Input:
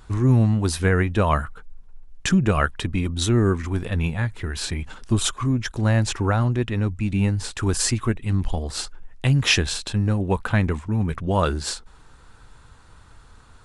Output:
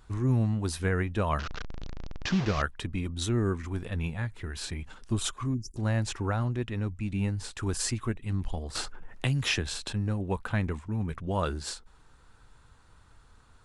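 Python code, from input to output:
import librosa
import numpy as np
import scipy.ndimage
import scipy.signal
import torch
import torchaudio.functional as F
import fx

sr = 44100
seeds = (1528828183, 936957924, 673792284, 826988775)

y = fx.delta_mod(x, sr, bps=32000, step_db=-20.5, at=(1.39, 2.62))
y = fx.spec_erase(y, sr, start_s=5.54, length_s=0.22, low_hz=400.0, high_hz=4600.0)
y = fx.band_squash(y, sr, depth_pct=70, at=(8.75, 9.93))
y = F.gain(torch.from_numpy(y), -8.5).numpy()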